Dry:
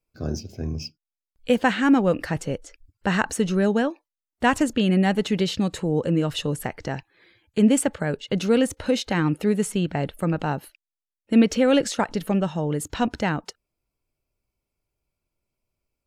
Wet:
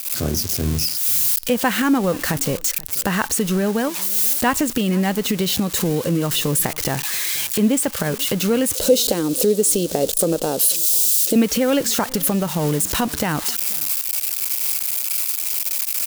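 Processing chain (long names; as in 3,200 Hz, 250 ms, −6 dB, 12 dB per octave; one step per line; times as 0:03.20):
spike at every zero crossing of −20 dBFS
camcorder AGC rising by 56 dB per second
0:08.75–0:11.36: graphic EQ with 10 bands 125 Hz −12 dB, 500 Hz +12 dB, 1,000 Hz −9 dB, 2,000 Hz −10 dB, 4,000 Hz +4 dB, 8,000 Hz +4 dB
single-tap delay 484 ms −22.5 dB
dynamic equaliser 1,100 Hz, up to +4 dB, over −43 dBFS, Q 4.1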